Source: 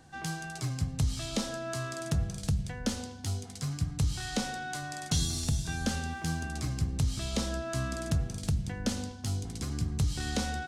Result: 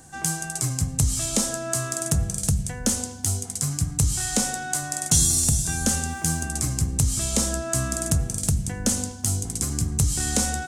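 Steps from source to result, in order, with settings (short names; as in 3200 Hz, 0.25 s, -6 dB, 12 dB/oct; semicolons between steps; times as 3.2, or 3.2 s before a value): resonant high shelf 5700 Hz +11.5 dB, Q 1.5; gain +6 dB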